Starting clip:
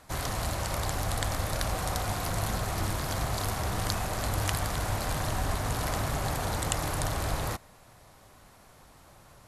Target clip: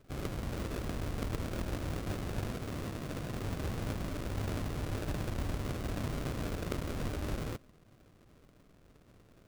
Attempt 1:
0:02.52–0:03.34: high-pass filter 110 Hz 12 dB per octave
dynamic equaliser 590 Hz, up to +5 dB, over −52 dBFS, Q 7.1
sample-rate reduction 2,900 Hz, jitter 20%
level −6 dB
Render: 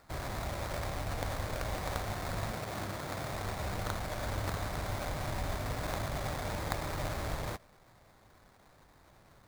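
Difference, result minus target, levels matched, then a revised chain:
sample-rate reduction: distortion −5 dB
0:02.52–0:03.34: high-pass filter 110 Hz 12 dB per octave
dynamic equaliser 590 Hz, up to +5 dB, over −52 dBFS, Q 7.1
sample-rate reduction 880 Hz, jitter 20%
level −6 dB

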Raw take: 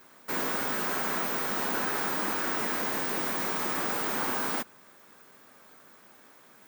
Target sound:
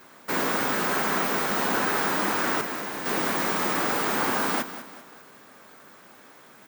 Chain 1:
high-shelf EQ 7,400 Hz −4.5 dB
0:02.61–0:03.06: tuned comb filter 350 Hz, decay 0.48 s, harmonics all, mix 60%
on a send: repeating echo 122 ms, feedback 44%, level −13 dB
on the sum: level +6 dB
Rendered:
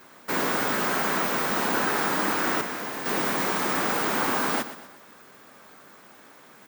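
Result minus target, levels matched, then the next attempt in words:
echo 73 ms early
high-shelf EQ 7,400 Hz −4.5 dB
0:02.61–0:03.06: tuned comb filter 350 Hz, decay 0.48 s, harmonics all, mix 60%
on a send: repeating echo 195 ms, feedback 44%, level −13 dB
on the sum: level +6 dB

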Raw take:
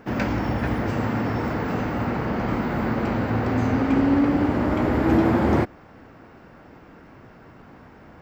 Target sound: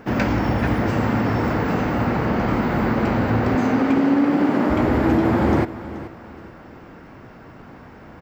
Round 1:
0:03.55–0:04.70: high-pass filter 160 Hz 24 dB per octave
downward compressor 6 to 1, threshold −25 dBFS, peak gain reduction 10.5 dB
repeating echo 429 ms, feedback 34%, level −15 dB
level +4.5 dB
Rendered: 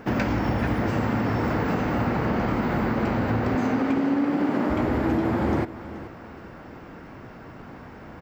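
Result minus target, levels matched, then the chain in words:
downward compressor: peak gain reduction +6 dB
0:03.55–0:04.70: high-pass filter 160 Hz 24 dB per octave
downward compressor 6 to 1, threshold −18 dBFS, peak gain reduction 5 dB
repeating echo 429 ms, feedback 34%, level −15 dB
level +4.5 dB

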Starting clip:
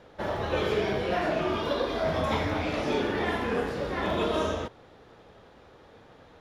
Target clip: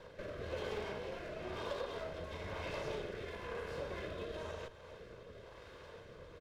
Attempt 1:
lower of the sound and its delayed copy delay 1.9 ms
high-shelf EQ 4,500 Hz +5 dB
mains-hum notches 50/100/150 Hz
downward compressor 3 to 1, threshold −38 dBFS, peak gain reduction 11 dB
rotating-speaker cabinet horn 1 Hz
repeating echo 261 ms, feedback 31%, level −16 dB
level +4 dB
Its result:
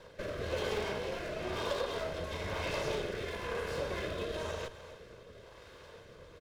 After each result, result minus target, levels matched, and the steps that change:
downward compressor: peak gain reduction −6 dB; 8,000 Hz band +3.5 dB
change: downward compressor 3 to 1, threshold −47 dBFS, peak gain reduction 17 dB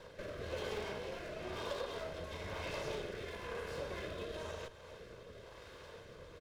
8,000 Hz band +5.0 dB
change: high-shelf EQ 4,500 Hz −2.5 dB

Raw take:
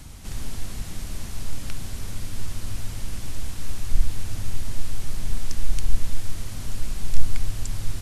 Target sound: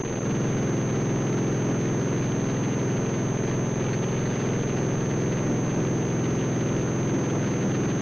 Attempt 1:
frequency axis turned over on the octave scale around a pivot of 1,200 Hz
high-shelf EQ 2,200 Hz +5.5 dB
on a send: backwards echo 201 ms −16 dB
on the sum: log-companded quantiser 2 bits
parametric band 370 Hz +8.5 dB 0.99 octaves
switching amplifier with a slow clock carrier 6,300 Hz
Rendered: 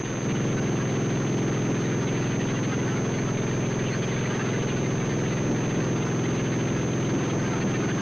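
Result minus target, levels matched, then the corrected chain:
4,000 Hz band +4.5 dB
frequency axis turned over on the octave scale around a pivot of 1,200 Hz
high-shelf EQ 2,200 Hz −4.5 dB
on a send: backwards echo 201 ms −16 dB
on the sum: log-companded quantiser 2 bits
parametric band 370 Hz +8.5 dB 0.99 octaves
switching amplifier with a slow clock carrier 6,300 Hz

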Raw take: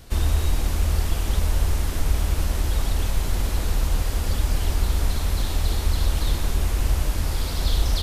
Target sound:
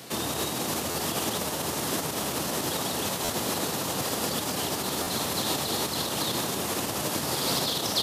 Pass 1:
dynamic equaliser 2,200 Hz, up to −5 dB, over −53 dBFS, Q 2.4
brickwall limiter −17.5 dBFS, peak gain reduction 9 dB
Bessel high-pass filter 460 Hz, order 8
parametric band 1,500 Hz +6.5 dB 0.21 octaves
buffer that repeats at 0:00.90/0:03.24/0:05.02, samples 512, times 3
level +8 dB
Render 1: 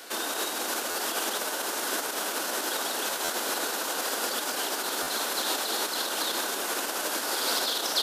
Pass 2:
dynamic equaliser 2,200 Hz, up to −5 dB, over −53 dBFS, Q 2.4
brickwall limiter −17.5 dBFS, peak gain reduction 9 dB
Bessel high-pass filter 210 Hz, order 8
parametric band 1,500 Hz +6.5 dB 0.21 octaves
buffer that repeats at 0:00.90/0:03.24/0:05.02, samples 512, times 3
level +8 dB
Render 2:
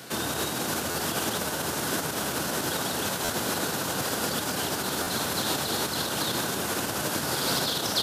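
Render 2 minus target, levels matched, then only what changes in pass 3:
2,000 Hz band +4.0 dB
change: parametric band 1,500 Hz −4 dB 0.21 octaves

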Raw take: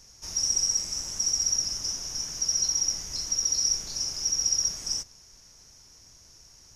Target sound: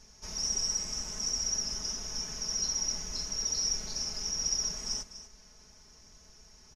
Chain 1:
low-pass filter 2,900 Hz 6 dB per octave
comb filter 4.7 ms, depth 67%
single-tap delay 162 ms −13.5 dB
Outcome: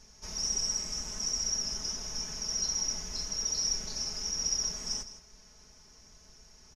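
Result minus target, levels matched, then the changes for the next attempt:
echo 84 ms early
change: single-tap delay 246 ms −13.5 dB

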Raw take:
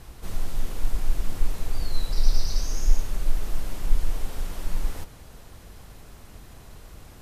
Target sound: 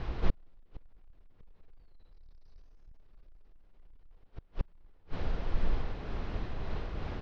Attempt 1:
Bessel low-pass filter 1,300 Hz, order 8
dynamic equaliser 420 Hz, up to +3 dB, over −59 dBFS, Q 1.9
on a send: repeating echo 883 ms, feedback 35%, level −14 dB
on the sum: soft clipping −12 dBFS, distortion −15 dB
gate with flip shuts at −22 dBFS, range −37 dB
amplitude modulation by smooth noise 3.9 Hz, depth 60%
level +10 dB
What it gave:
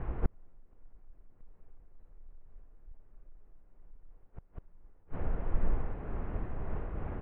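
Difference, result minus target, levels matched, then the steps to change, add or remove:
2,000 Hz band −5.0 dB; soft clipping: distortion −6 dB
change: Bessel low-pass filter 2,800 Hz, order 8
change: soft clipping −19 dBFS, distortion −9 dB

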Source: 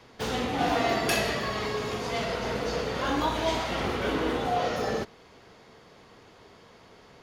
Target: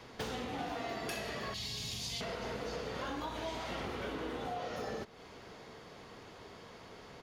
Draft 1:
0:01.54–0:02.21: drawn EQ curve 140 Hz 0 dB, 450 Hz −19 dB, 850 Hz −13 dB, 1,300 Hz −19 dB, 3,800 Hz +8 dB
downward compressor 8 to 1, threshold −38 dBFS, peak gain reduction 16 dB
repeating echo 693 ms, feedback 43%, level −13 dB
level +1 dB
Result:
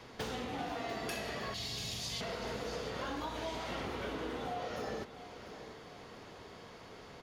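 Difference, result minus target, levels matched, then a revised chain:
echo-to-direct +11.5 dB
0:01.54–0:02.21: drawn EQ curve 140 Hz 0 dB, 450 Hz −19 dB, 850 Hz −13 dB, 1,300 Hz −19 dB, 3,800 Hz +8 dB
downward compressor 8 to 1, threshold −38 dBFS, peak gain reduction 16 dB
repeating echo 693 ms, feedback 43%, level −24.5 dB
level +1 dB

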